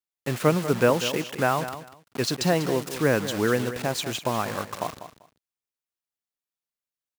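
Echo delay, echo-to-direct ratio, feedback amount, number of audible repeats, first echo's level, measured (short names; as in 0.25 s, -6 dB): 0.195 s, -12.0 dB, 19%, 2, -12.0 dB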